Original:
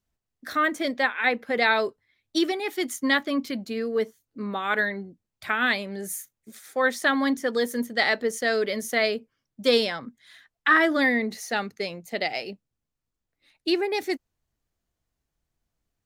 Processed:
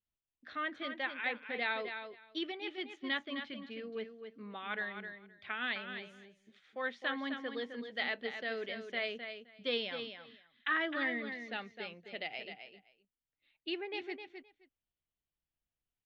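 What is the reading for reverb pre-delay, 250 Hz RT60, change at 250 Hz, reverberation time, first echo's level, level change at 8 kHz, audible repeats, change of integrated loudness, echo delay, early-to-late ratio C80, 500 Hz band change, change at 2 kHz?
no reverb, no reverb, -15.5 dB, no reverb, -8.0 dB, under -30 dB, 2, -13.5 dB, 260 ms, no reverb, -15.0 dB, -12.0 dB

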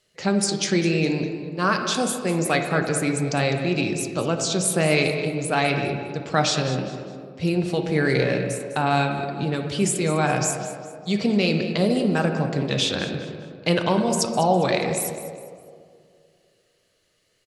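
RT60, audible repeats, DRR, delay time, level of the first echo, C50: 2.3 s, 2, 3.5 dB, 203 ms, -13.5 dB, 5.5 dB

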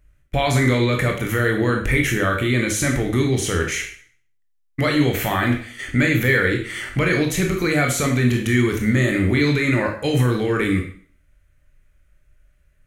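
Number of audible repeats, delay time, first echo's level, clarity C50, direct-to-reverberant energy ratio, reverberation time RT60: no echo, no echo, no echo, 6.5 dB, 1.5 dB, 0.50 s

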